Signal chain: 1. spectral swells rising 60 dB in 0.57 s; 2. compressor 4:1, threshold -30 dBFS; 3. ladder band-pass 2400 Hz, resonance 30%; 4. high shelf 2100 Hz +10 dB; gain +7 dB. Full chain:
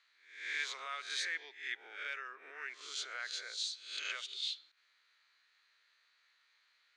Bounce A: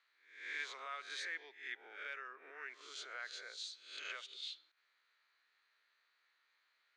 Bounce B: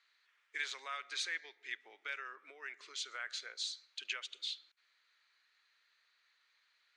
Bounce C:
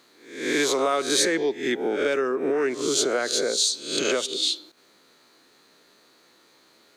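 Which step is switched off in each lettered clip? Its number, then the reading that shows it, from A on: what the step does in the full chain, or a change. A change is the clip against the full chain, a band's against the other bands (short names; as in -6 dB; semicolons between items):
4, 8 kHz band -5.5 dB; 1, crest factor change +2.5 dB; 3, 500 Hz band +19.5 dB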